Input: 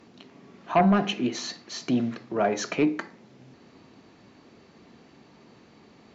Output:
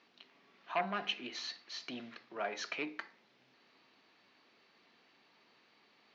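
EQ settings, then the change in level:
resonant band-pass 6,200 Hz, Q 1.2
high-frequency loss of the air 350 metres
+8.5 dB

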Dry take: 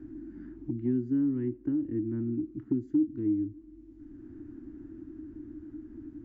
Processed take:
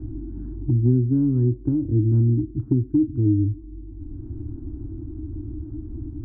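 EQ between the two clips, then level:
low-pass filter 1,000 Hz 24 dB per octave
low shelf with overshoot 150 Hz +12 dB, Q 1.5
+8.5 dB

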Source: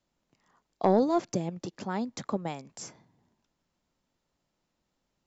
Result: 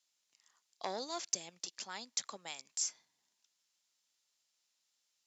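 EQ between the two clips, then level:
high-frequency loss of the air 54 metres
first difference
high-shelf EQ 2,400 Hz +9.5 dB
+4.5 dB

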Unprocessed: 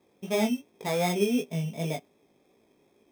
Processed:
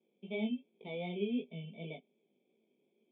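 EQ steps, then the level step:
formant resonators in series i
high-pass filter 210 Hz 24 dB per octave
phaser with its sweep stopped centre 680 Hz, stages 4
+9.5 dB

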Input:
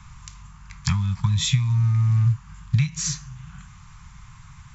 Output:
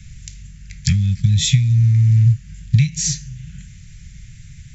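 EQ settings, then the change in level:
elliptic band-stop filter 320–1,800 Hz, stop band 50 dB
parametric band 1,400 Hz −5 dB 1.8 octaves
+7.0 dB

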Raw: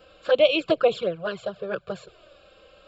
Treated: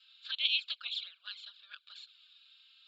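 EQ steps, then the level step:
inverse Chebyshev high-pass filter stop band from 220 Hz, stop band 80 dB
low-pass with resonance 3,800 Hz, resonance Q 4.8
first difference
−3.5 dB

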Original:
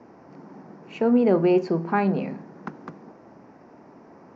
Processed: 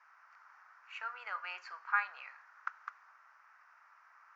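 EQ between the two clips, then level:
elliptic high-pass filter 1,300 Hz, stop band 80 dB
high-shelf EQ 2,300 Hz −9.5 dB
parametric band 4,200 Hz −10.5 dB 2.6 octaves
+9.0 dB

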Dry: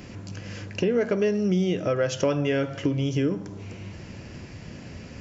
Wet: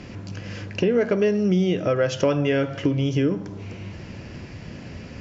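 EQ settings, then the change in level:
low-pass filter 5,600 Hz 12 dB per octave
+3.0 dB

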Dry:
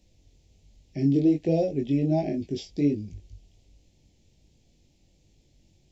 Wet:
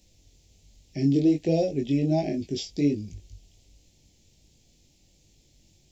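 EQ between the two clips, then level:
high-shelf EQ 3,400 Hz +10.5 dB
0.0 dB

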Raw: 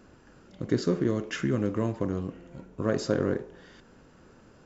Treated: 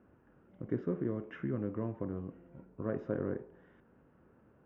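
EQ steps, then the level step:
moving average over 10 samples
high-pass filter 51 Hz
high-frequency loss of the air 310 metres
−8.0 dB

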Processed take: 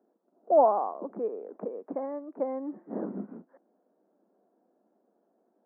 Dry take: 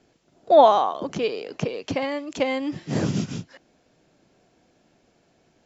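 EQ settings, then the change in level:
Gaussian smoothing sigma 8.6 samples
elliptic high-pass filter 200 Hz, stop band 40 dB
low-shelf EQ 330 Hz −8.5 dB
−2.0 dB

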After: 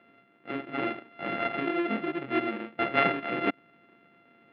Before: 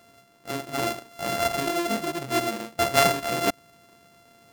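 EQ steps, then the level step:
high-frequency loss of the air 280 metres
loudspeaker in its box 260–2,900 Hz, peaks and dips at 450 Hz −5 dB, 670 Hz −10 dB, 1,000 Hz −9 dB, 1,500 Hz −3 dB
+3.5 dB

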